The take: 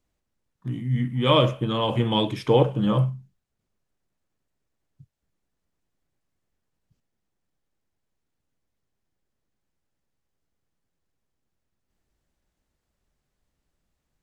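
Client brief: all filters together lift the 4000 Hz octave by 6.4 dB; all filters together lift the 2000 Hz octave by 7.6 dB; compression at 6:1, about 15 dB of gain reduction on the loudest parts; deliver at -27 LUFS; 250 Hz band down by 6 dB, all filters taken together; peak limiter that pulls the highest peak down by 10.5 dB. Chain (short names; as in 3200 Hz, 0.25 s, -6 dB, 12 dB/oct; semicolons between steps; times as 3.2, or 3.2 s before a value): bell 250 Hz -8.5 dB; bell 2000 Hz +8 dB; bell 4000 Hz +5 dB; compressor 6:1, threshold -29 dBFS; gain +10.5 dB; limiter -17.5 dBFS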